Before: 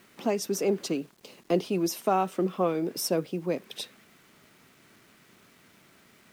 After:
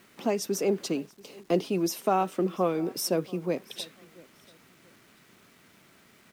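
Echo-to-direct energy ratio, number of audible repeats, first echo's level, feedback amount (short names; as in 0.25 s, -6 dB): -23.0 dB, 2, -23.5 dB, 29%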